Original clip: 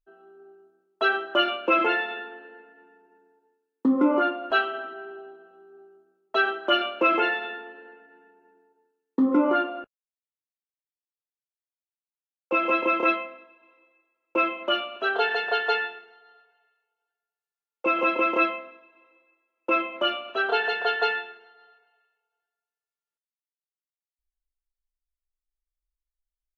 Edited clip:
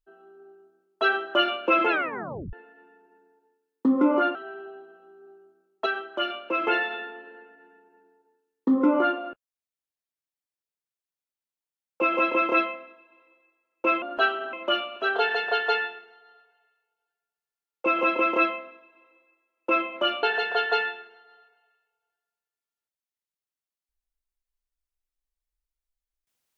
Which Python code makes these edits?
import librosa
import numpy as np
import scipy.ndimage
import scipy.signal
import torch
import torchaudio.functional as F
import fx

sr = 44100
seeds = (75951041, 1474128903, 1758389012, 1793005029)

y = fx.edit(x, sr, fx.tape_stop(start_s=1.89, length_s=0.64),
    fx.move(start_s=4.35, length_s=0.51, to_s=14.53),
    fx.clip_gain(start_s=6.37, length_s=0.81, db=-6.0),
    fx.cut(start_s=20.23, length_s=0.3), tone=tone)